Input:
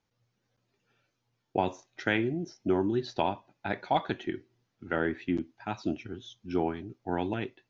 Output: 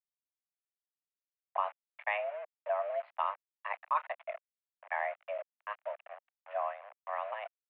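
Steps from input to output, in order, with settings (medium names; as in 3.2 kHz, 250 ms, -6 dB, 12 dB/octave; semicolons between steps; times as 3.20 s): small samples zeroed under -38 dBFS; mistuned SSB +300 Hz 320–2300 Hz; trim -4 dB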